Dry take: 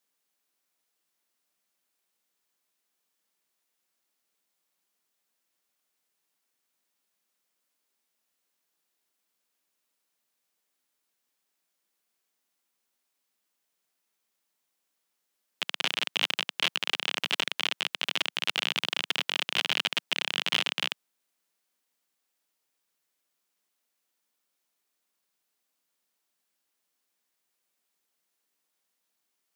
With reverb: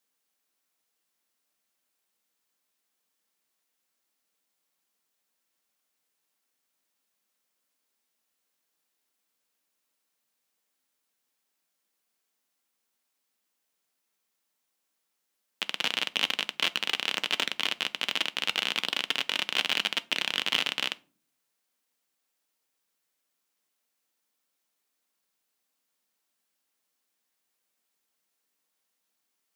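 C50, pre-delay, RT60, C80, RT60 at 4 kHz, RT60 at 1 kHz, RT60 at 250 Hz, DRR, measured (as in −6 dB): 23.5 dB, 4 ms, 0.40 s, 29.5 dB, 0.25 s, 0.35 s, 0.70 s, 12.0 dB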